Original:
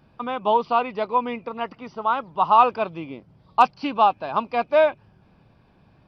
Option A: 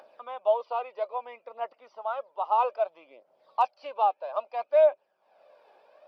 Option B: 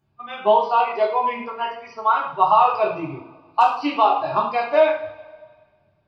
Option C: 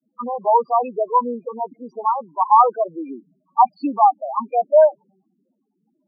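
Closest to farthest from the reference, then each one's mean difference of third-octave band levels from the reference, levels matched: B, A, C; 5.5 dB, 8.0 dB, 11.5 dB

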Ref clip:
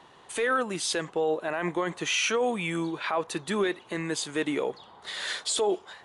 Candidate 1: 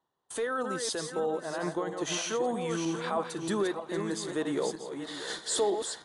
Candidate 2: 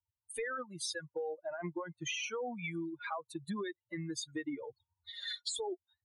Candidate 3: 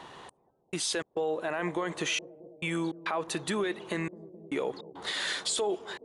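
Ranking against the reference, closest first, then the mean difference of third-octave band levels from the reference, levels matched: 1, 3, 2; 6.0 dB, 8.0 dB, 13.0 dB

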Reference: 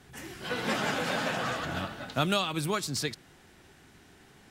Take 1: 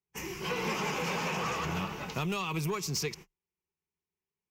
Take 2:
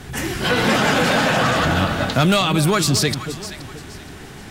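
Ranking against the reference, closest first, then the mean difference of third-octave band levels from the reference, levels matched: 2, 1; 4.0 dB, 9.0 dB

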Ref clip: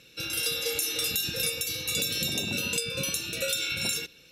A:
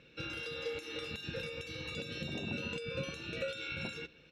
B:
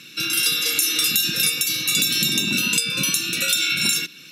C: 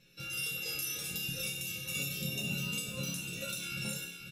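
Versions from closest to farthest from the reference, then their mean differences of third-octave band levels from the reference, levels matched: B, C, A; 3.0 dB, 5.0 dB, 9.0 dB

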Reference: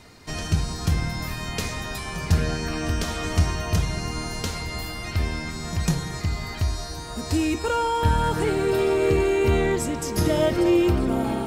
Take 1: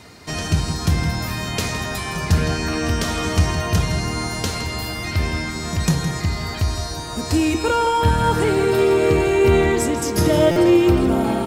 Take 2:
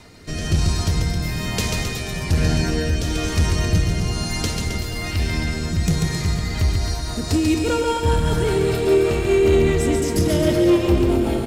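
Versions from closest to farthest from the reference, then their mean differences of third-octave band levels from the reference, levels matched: 1, 2; 1.0 dB, 3.0 dB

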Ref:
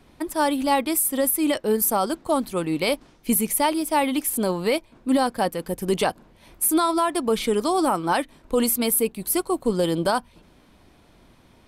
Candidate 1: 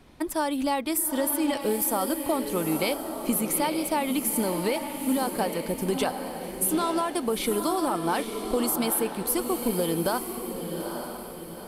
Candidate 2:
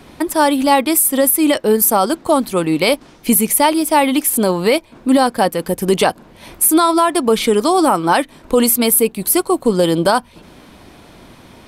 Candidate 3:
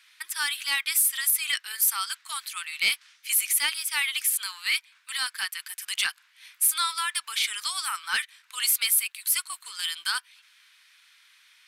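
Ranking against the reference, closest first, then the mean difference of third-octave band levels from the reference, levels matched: 2, 1, 3; 1.5 dB, 9.5 dB, 14.5 dB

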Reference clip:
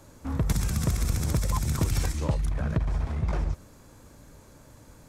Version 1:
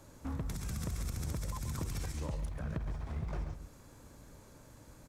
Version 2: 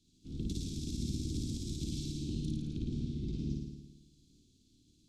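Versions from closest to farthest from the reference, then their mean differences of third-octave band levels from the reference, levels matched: 1, 2; 4.0 dB, 11.5 dB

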